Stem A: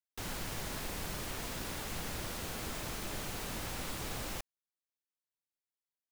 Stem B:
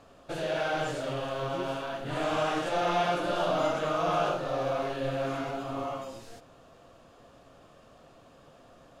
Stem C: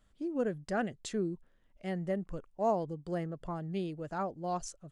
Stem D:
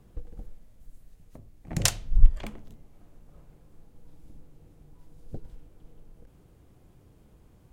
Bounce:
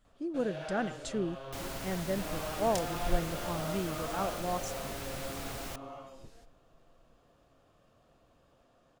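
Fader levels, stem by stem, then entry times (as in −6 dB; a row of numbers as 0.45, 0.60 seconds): −1.5, −11.5, 0.0, −15.5 decibels; 1.35, 0.05, 0.00, 0.90 seconds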